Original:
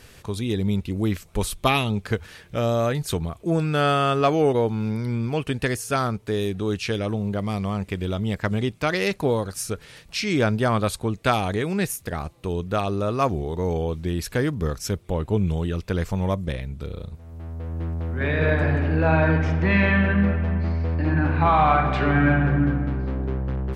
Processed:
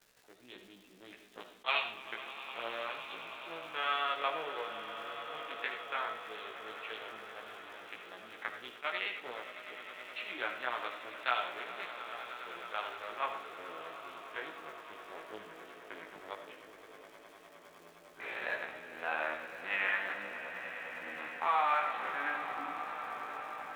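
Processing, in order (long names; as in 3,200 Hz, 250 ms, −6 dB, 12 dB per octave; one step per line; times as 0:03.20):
adaptive Wiener filter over 41 samples
linear-prediction vocoder at 8 kHz pitch kept
high-pass filter 1,200 Hz 12 dB per octave
surface crackle 240 per second −44 dBFS
echo that builds up and dies away 103 ms, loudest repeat 8, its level −17 dB
pitch vibrato 1.8 Hz 23 cents
on a send at −7 dB: convolution reverb RT60 0.40 s, pre-delay 35 ms
on the sum: chorus effect 0.1 Hz, delay 16 ms, depth 2.8 ms
level that may rise only so fast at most 510 dB per second
level −2.5 dB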